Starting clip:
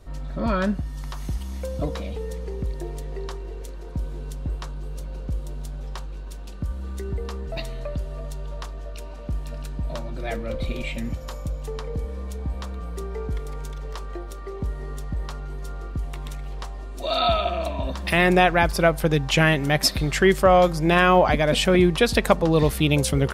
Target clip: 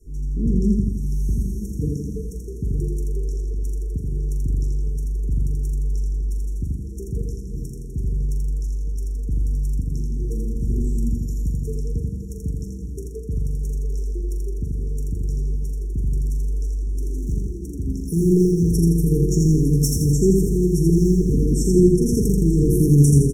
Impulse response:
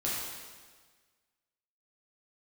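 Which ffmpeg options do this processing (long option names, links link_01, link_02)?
-filter_complex "[0:a]asplit=2[link_01][link_02];[link_02]aecho=0:1:917:0.224[link_03];[link_01][link_03]amix=inputs=2:normalize=0,adynamicequalizer=threshold=0.02:dfrequency=140:dqfactor=0.87:tfrequency=140:tqfactor=0.87:attack=5:release=100:ratio=0.375:range=3:mode=boostabove:tftype=bell,asoftclip=type=hard:threshold=-12.5dB,asplit=2[link_04][link_05];[link_05]adelay=42,volume=-8dB[link_06];[link_04][link_06]amix=inputs=2:normalize=0,asplit=2[link_07][link_08];[link_08]aecho=0:1:83|166|249|332|415|498|581:0.708|0.382|0.206|0.111|0.0602|0.0325|0.0176[link_09];[link_07][link_09]amix=inputs=2:normalize=0,afftfilt=real='re*(1-between(b*sr/4096,470,5400))':imag='im*(1-between(b*sr/4096,470,5400))':win_size=4096:overlap=0.75"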